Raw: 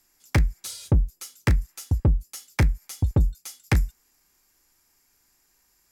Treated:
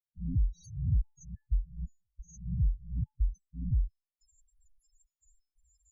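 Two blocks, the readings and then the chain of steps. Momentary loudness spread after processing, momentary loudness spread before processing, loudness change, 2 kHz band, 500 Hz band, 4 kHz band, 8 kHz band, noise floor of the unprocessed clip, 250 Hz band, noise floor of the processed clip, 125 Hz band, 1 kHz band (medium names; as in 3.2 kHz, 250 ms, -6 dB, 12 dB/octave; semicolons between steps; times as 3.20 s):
13 LU, 9 LU, -9.0 dB, under -40 dB, under -40 dB, under -30 dB, -20.5 dB, -67 dBFS, -11.5 dB, under -85 dBFS, -9.5 dB, under -40 dB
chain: reverse spectral sustain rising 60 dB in 0.54 s; dynamic bell 260 Hz, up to +5 dB, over -43 dBFS, Q 6.3; in parallel at -1 dB: level held to a coarse grid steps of 10 dB; on the sum: peak limiter -11 dBFS, peak gain reduction 7.5 dB; reverse; upward compressor, threshold -29 dBFS; reverse; trance gate ".xxxxx.x.xx." 89 bpm -60 dB; feedback comb 870 Hz, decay 0.38 s, mix 40%; loudest bins only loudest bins 4; resampled via 22.05 kHz; trim -4.5 dB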